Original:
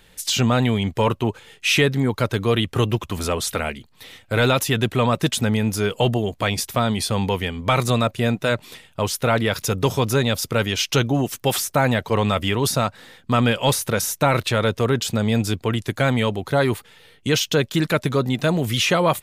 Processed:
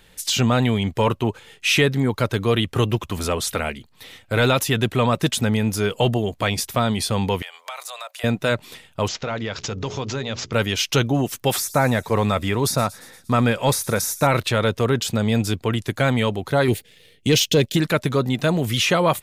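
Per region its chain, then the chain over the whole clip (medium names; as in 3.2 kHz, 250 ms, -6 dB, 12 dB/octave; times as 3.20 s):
7.42–8.24 s: steep high-pass 620 Hz + treble shelf 4.7 kHz +5.5 dB + compression 4:1, threshold -32 dBFS
9.08–10.53 s: hum notches 60/120/180/240/300/360/420 Hz + compression 2.5:1, threshold -26 dBFS + careless resampling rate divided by 3×, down none, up filtered
11.56–14.27 s: peaking EQ 3 kHz -10 dB 0.3 oct + feedback echo behind a high-pass 117 ms, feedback 62%, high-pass 5.4 kHz, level -13 dB
16.68–17.77 s: Butterworth band-stop 1.1 kHz, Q 0.84 + waveshaping leveller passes 1
whole clip: none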